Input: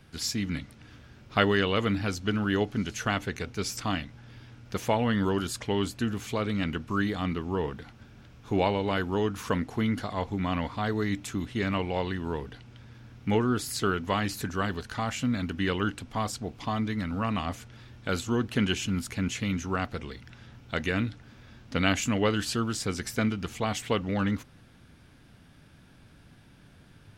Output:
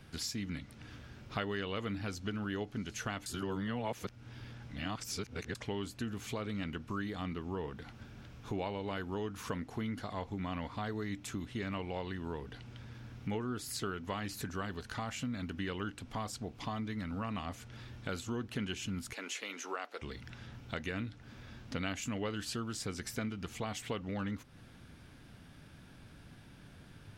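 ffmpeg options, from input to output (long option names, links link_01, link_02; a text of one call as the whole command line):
ffmpeg -i in.wav -filter_complex "[0:a]asettb=1/sr,asplit=3[link_01][link_02][link_03];[link_01]atrim=end=19.134[link_04];[link_02]atrim=start=19.13:end=20.02,asetpts=PTS-STARTPTS,afade=type=in:duration=0.004:curve=qsin,afade=type=out:start_time=0.886:duration=0.004:curve=qsin,highpass=frequency=390:width=0.5412,highpass=frequency=390:width=1.3066[link_05];[link_03]atrim=start=20.016[link_06];[link_04][link_05]acrossfade=duration=0.004:curve1=hsin:curve2=qsin[link_07];[link_07][link_06]acrossfade=duration=0.004:curve1=qsin:curve2=hsin,asplit=3[link_08][link_09][link_10];[link_08]atrim=end=3.262[link_11];[link_09]atrim=start=3.258:end=5.552,asetpts=PTS-STARTPTS,areverse[link_12];[link_10]atrim=start=5.548[link_13];[link_11][link_12]acrossfade=duration=0.004:curve1=hsin:curve2=hsin[link_14];[link_14][link_13]acrossfade=duration=0.004:curve1=hsin:curve2=hsin,acompressor=threshold=-40dB:ratio=2.5" out.wav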